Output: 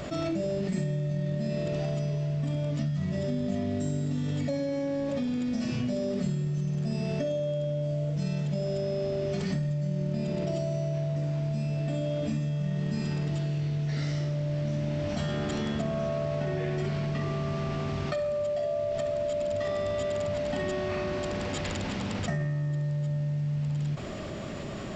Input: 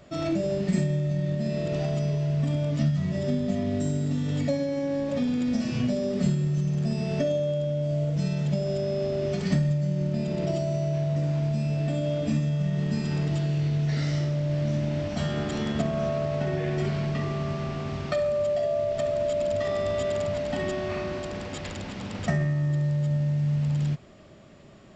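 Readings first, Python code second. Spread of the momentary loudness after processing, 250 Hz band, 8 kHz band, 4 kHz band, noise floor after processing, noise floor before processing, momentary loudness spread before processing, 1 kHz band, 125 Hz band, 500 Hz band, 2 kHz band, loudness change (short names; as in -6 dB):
1 LU, -3.0 dB, n/a, -2.0 dB, -33 dBFS, -37 dBFS, 4 LU, -2.0 dB, -3.5 dB, -3.0 dB, -2.0 dB, -3.5 dB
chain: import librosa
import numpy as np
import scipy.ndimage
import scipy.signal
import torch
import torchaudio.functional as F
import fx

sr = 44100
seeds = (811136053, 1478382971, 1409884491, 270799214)

y = fx.env_flatten(x, sr, amount_pct=70)
y = F.gain(torch.from_numpy(y), -7.5).numpy()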